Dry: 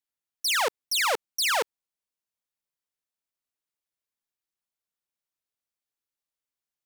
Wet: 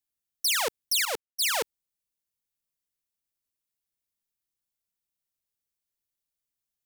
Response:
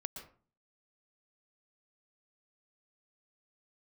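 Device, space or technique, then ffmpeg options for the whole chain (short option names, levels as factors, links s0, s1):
smiley-face EQ: -filter_complex "[0:a]lowshelf=f=170:g=7,equalizer=f=1000:t=o:w=2.4:g=-5.5,highshelf=f=8700:g=6,asettb=1/sr,asplit=3[s0][s1][s2];[s0]atrim=end=1.054[s3];[s1]atrim=start=1.05:end=1.54,asetpts=PTS-STARTPTS,afade=t=in:d=0.004:c=qsin,afade=t=out:st=0.486:d=0.004:c=qsin,agate=range=0.0224:threshold=0.0708:ratio=3:detection=peak[s4];[s2]atrim=start=1.536[s5];[s3][s4]acrossfade=d=0.004:c1=hsin:c2=qsin[s6];[s6][s5]acrossfade=d=0.004:c1=qsin:c2=hsin"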